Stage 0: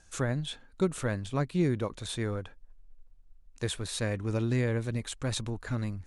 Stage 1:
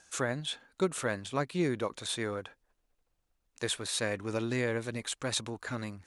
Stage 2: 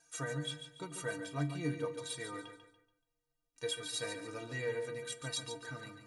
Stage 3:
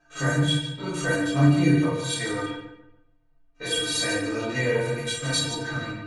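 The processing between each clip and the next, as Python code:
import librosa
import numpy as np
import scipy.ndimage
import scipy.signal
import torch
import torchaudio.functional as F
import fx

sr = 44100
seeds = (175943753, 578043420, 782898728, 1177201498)

y1 = fx.highpass(x, sr, hz=450.0, slope=6)
y1 = F.gain(torch.from_numpy(y1), 3.0).numpy()
y2 = fx.stiff_resonator(y1, sr, f0_hz=140.0, decay_s=0.33, stiffness=0.03)
y2 = fx.echo_feedback(y2, sr, ms=143, feedback_pct=34, wet_db=-9.0)
y2 = fx.room_shoebox(y2, sr, seeds[0], volume_m3=830.0, walls='furnished', distance_m=0.4)
y2 = F.gain(torch.from_numpy(y2), 4.5).numpy()
y3 = fx.spec_steps(y2, sr, hold_ms=50)
y3 = fx.env_lowpass(y3, sr, base_hz=1700.0, full_db=-38.0)
y3 = fx.room_shoebox(y3, sr, seeds[1], volume_m3=57.0, walls='mixed', distance_m=2.1)
y3 = F.gain(torch.from_numpy(y3), 7.0).numpy()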